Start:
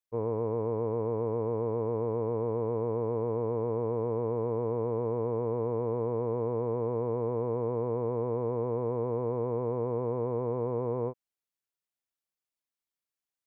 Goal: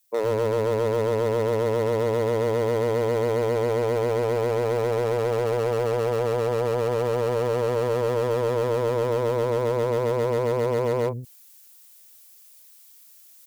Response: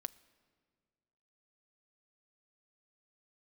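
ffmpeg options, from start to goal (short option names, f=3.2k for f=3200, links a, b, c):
-filter_complex "[0:a]acrossover=split=230[a][b];[a]adelay=110[c];[c][b]amix=inputs=2:normalize=0,volume=28dB,asoftclip=hard,volume=-28dB,crystalizer=i=6:c=0,areverse,acompressor=mode=upward:threshold=-44dB:ratio=2.5,areverse,equalizer=f=580:w=7.4:g=9.5,volume=7dB"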